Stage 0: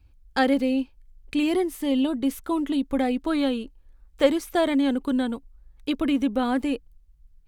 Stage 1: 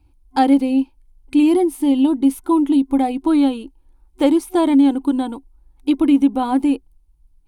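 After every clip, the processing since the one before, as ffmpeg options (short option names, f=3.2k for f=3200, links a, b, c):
-af "superequalizer=6b=3.16:9b=2.82:11b=0.562:16b=2.24"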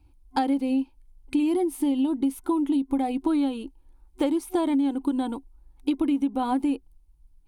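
-af "acompressor=threshold=-19dB:ratio=6,volume=-2dB"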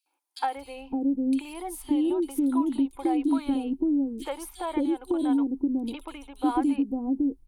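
-filter_complex "[0:a]acrossover=split=520|3300[a][b][c];[b]adelay=60[d];[a]adelay=560[e];[e][d][c]amix=inputs=3:normalize=0"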